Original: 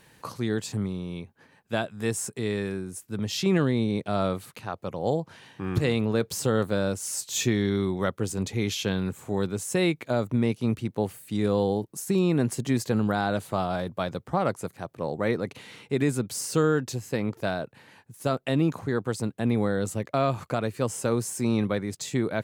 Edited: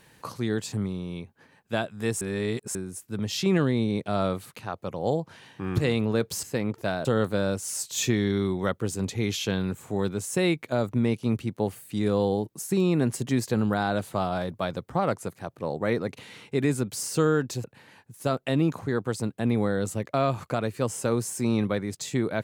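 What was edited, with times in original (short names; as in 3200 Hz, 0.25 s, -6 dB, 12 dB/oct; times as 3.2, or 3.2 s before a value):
2.21–2.75 reverse
17.02–17.64 move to 6.43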